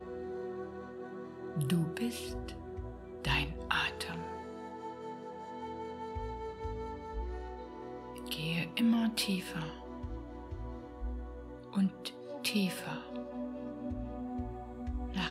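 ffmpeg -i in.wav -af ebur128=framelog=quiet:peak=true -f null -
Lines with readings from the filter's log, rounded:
Integrated loudness:
  I:         -37.8 LUFS
  Threshold: -47.8 LUFS
Loudness range:
  LRA:         7.0 LU
  Threshold: -57.5 LUFS
  LRA low:   -42.5 LUFS
  LRA high:  -35.5 LUFS
True peak:
  Peak:      -14.6 dBFS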